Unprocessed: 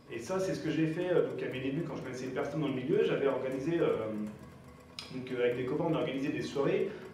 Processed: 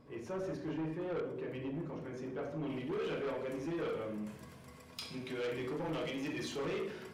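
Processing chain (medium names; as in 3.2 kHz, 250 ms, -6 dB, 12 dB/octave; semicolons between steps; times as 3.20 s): treble shelf 2 kHz -10 dB, from 2.70 s +2 dB, from 4.29 s +7 dB; saturation -31 dBFS, distortion -9 dB; trim -2.5 dB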